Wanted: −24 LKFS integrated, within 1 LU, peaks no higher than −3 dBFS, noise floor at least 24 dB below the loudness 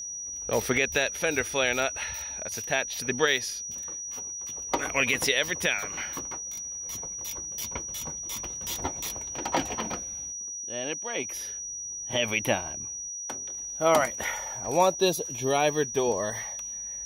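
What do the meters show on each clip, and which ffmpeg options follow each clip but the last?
interfering tone 5,800 Hz; level of the tone −34 dBFS; integrated loudness −28.5 LKFS; sample peak −10.0 dBFS; target loudness −24.0 LKFS
→ -af "bandreject=frequency=5800:width=30"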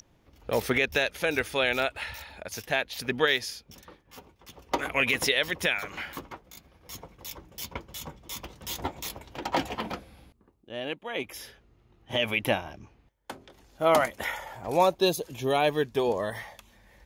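interfering tone none found; integrated loudness −28.5 LKFS; sample peak −10.5 dBFS; target loudness −24.0 LKFS
→ -af "volume=4.5dB"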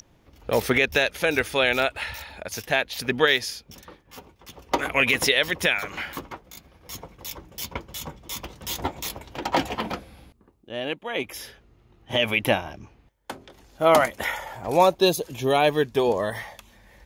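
integrated loudness −24.0 LKFS; sample peak −6.0 dBFS; background noise floor −59 dBFS

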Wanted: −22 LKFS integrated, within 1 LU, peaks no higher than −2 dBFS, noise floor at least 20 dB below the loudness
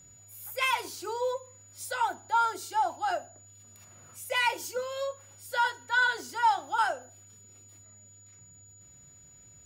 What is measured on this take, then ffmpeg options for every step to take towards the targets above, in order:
interfering tone 6,900 Hz; level of the tone −53 dBFS; integrated loudness −29.5 LKFS; sample peak −15.5 dBFS; target loudness −22.0 LKFS
→ -af "bandreject=frequency=6900:width=30"
-af "volume=7.5dB"

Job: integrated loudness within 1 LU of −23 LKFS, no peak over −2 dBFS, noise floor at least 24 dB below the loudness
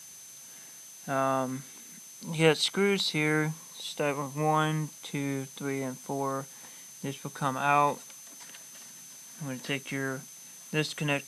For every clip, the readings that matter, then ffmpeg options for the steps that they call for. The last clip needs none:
interfering tone 6,200 Hz; level of the tone −48 dBFS; background noise floor −49 dBFS; target noise floor −54 dBFS; integrated loudness −30.0 LKFS; sample peak −8.0 dBFS; target loudness −23.0 LKFS
→ -af "bandreject=frequency=6200:width=30"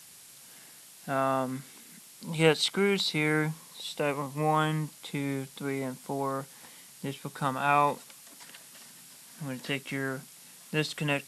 interfering tone none found; background noise floor −52 dBFS; target noise floor −54 dBFS
→ -af "afftdn=noise_reduction=6:noise_floor=-52"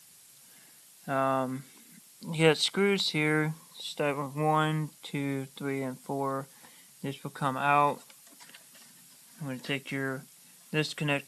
background noise floor −56 dBFS; integrated loudness −30.0 LKFS; sample peak −8.0 dBFS; target loudness −23.0 LKFS
→ -af "volume=7dB,alimiter=limit=-2dB:level=0:latency=1"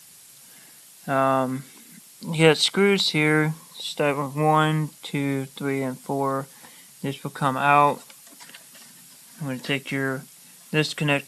integrated loudness −23.0 LKFS; sample peak −2.0 dBFS; background noise floor −49 dBFS

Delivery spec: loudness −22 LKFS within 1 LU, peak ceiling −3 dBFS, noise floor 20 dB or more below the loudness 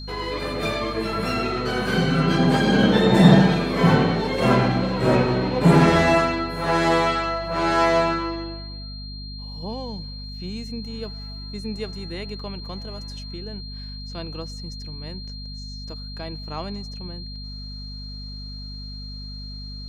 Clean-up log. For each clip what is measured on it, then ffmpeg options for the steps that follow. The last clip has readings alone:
mains hum 50 Hz; hum harmonics up to 250 Hz; level of the hum −33 dBFS; interfering tone 4,200 Hz; level of the tone −38 dBFS; integrated loudness −20.5 LKFS; sample peak −1.5 dBFS; target loudness −22.0 LKFS
→ -af "bandreject=frequency=50:width_type=h:width=6,bandreject=frequency=100:width_type=h:width=6,bandreject=frequency=150:width_type=h:width=6,bandreject=frequency=200:width_type=h:width=6,bandreject=frequency=250:width_type=h:width=6"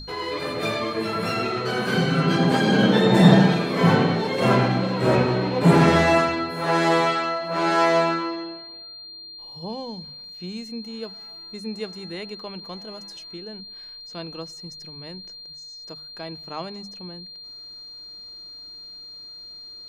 mains hum none found; interfering tone 4,200 Hz; level of the tone −38 dBFS
→ -af "bandreject=frequency=4200:width=30"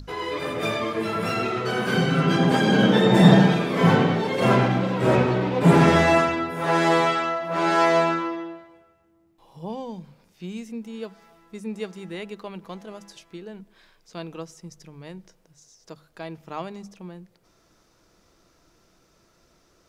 interfering tone none found; integrated loudness −20.0 LKFS; sample peak −1.5 dBFS; target loudness −22.0 LKFS
→ -af "volume=-2dB"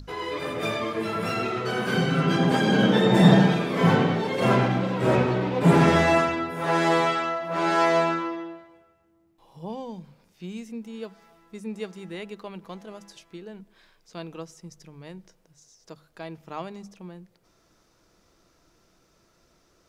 integrated loudness −22.0 LKFS; sample peak −3.5 dBFS; background noise floor −65 dBFS

